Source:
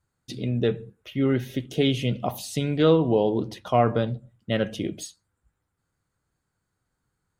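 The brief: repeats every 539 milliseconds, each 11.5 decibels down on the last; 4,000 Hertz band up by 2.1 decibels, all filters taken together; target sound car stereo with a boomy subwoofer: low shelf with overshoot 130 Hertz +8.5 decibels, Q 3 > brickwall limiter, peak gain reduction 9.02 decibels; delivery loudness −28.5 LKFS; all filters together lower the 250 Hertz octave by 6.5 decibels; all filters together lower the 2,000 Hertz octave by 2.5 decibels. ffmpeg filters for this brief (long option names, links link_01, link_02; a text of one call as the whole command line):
ffmpeg -i in.wav -af "lowshelf=frequency=130:width_type=q:width=3:gain=8.5,equalizer=frequency=250:width_type=o:gain=-6,equalizer=frequency=2000:width_type=o:gain=-4.5,equalizer=frequency=4000:width_type=o:gain=4.5,aecho=1:1:539|1078|1617:0.266|0.0718|0.0194,volume=-0.5dB,alimiter=limit=-18dB:level=0:latency=1" out.wav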